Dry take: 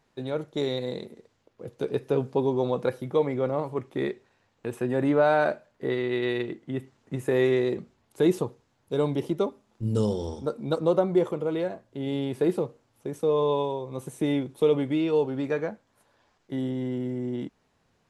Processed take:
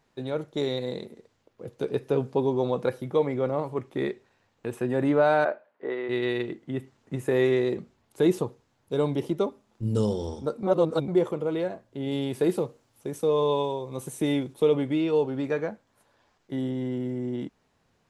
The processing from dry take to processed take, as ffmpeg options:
-filter_complex "[0:a]asplit=3[a][b][c];[a]afade=t=out:st=5.44:d=0.02[d];[b]highpass=400,lowpass=2.1k,afade=t=in:st=5.44:d=0.02,afade=t=out:st=6.08:d=0.02[e];[c]afade=t=in:st=6.08:d=0.02[f];[d][e][f]amix=inputs=3:normalize=0,asettb=1/sr,asplit=3[g][h][i];[g]atrim=end=12.114[j];[h]atrim=start=12.11:end=14.54,asetpts=PTS-STARTPTS,afade=t=in:d=0.004:c=qsin,afade=t=out:st=2.426:d=0.004:c=qsin,highshelf=f=3.7k:g=7[k];[i]atrim=start=14.536[l];[j][k]acrossfade=d=0.004:c1=hsin:c2=qsin[m];[m][l]acrossfade=d=0.004:c1=qsin:c2=hsin,asplit=3[n][o][p];[n]atrim=end=10.632[q];[o]atrim=start=10.628:end=11.082,asetpts=PTS-STARTPTS,areverse[r];[p]atrim=start=11.078[s];[q][r]acrossfade=d=0.004:c1=hsin:c2=hsin[t];[t][s]acrossfade=d=0.004:c1=hsin:c2=hsin"

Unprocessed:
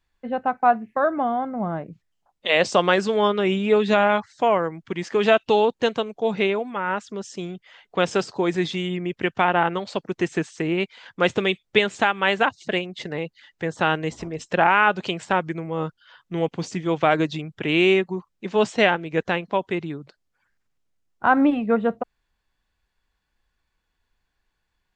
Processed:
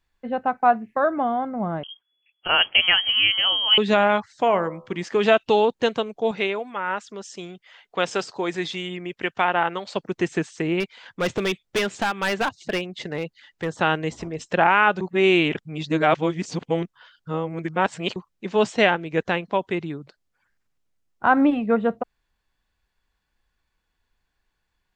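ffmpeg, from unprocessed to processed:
-filter_complex "[0:a]asettb=1/sr,asplit=3[a][b][c];[a]atrim=end=1.834[d];[b]atrim=start=1.83:end=3.78,asetpts=PTS-STARTPTS,afade=t=in:d=0.004:c=qsin,afade=t=out:st=1.946:d=0.004:c=qsin,lowpass=f=2.9k:t=q:w=0.5098,lowpass=f=2.9k:t=q:w=0.6013,lowpass=f=2.9k:t=q:w=0.9,lowpass=f=2.9k:t=q:w=2.563,afreqshift=-3400[e];[c]atrim=start=3.776[f];[d][e]acrossfade=d=0.004:c1=hsin:c2=qsin[g];[g][f]acrossfade=d=0.004:c1=qsin:c2=hsin,asettb=1/sr,asplit=3[h][i][j];[h]atrim=end=4.444[k];[i]atrim=start=4.44:end=5.01,asetpts=PTS-STARTPTS,afade=t=in:d=0.004:c=qsin,afade=t=out:st=0.566:d=0.004:c=qsin,bandreject=f=71.89:t=h:w=4,bandreject=f=143.78:t=h:w=4,bandreject=f=215.67:t=h:w=4,bandreject=f=287.56:t=h:w=4,bandreject=f=359.45:t=h:w=4,bandreject=f=431.34:t=h:w=4,bandreject=f=503.23:t=h:w=4,bandreject=f=575.12:t=h:w=4,bandreject=f=647.01:t=h:w=4,bandreject=f=718.9:t=h:w=4,bandreject=f=790.79:t=h:w=4,bandreject=f=862.68:t=h:w=4,bandreject=f=934.57:t=h:w=4,bandreject=f=1.00646k:t=h:w=4,bandreject=f=1.07835k:t=h:w=4,bandreject=f=1.15024k:t=h:w=4,bandreject=f=1.22213k:t=h:w=4,bandreject=f=1.29402k:t=h:w=4[l];[j]atrim=start=5.006[m];[k][l]acrossfade=d=0.004:c1=hsin:c2=qsin[n];[n][m]acrossfade=d=0.004:c1=qsin:c2=hsin,asettb=1/sr,asplit=3[o][p][q];[o]atrim=end=6.314[r];[p]atrim=start=6.31:end=9.96,asetpts=PTS-STARTPTS,afade=t=in:d=0.004:c=qsin,afade=t=out:st=3.646:d=0.004:c=qsin,lowshelf=f=340:g=-9.5[s];[q]atrim=start=9.956[t];[r][s]acrossfade=d=0.004:c1=hsin:c2=qsin[u];[u][t]acrossfade=d=0.004:c1=qsin:c2=hsin,asettb=1/sr,asplit=3[v][w][x];[v]atrim=end=10.804[y];[w]atrim=start=10.8:end=13.76,asetpts=PTS-STARTPTS,afade=t=in:d=0.004:c=qsin,afade=t=out:st=2.956:d=0.004:c=qsin,asoftclip=type=hard:threshold=-18.5dB[z];[x]atrim=start=13.756[aa];[y][z]acrossfade=d=0.004:c1=hsin:c2=qsin[ab];[ab][aa]acrossfade=d=0.004:c1=qsin:c2=hsin,asplit=3[ac][ad][ae];[ac]atrim=end=15.012[af];[ad]atrim=start=15.008:end=18.162,asetpts=PTS-STARTPTS,areverse[ag];[ae]atrim=start=18.158[ah];[af][ag]acrossfade=d=0.004:c1=hsin:c2=hsin[ai];[ai][ah]acrossfade=d=0.004:c1=hsin:c2=hsin"

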